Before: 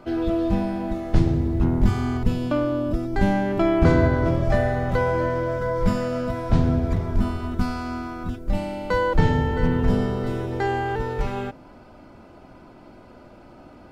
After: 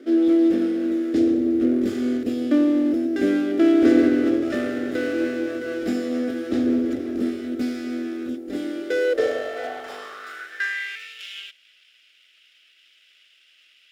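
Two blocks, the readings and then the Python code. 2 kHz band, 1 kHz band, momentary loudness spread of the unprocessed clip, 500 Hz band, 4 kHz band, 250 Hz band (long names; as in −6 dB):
+1.0 dB, −11.5 dB, 8 LU, +0.5 dB, +2.5 dB, +4.5 dB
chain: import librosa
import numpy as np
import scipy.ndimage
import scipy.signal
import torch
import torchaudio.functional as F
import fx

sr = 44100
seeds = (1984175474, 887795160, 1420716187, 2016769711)

y = fx.lower_of_two(x, sr, delay_ms=0.57)
y = fx.filter_sweep_highpass(y, sr, from_hz=280.0, to_hz=2800.0, start_s=8.62, end_s=11.15, q=5.7)
y = fx.fixed_phaser(y, sr, hz=400.0, stages=4)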